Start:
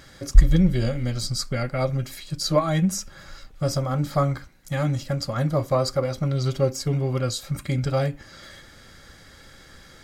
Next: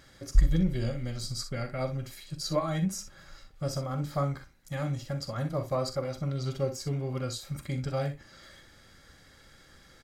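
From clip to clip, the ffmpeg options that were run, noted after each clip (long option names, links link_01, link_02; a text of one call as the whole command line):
ffmpeg -i in.wav -af "aecho=1:1:43|62:0.266|0.251,volume=-8.5dB" out.wav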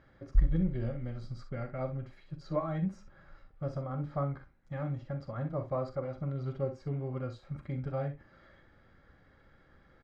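ffmpeg -i in.wav -af "lowpass=1600,volume=-3.5dB" out.wav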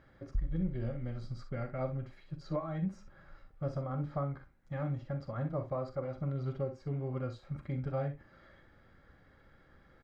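ffmpeg -i in.wav -af "alimiter=level_in=0.5dB:limit=-24dB:level=0:latency=1:release=478,volume=-0.5dB" out.wav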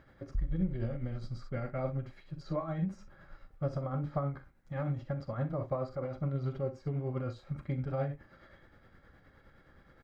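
ffmpeg -i in.wav -af "tremolo=f=9.6:d=0.45,volume=3.5dB" out.wav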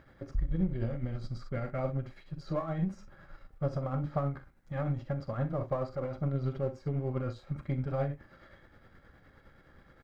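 ffmpeg -i in.wav -af "aeval=exprs='if(lt(val(0),0),0.708*val(0),val(0))':channel_layout=same,volume=3dB" out.wav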